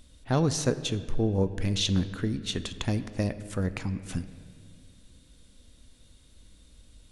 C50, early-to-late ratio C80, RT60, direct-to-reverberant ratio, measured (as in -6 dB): 13.0 dB, 14.0 dB, 2.1 s, 11.5 dB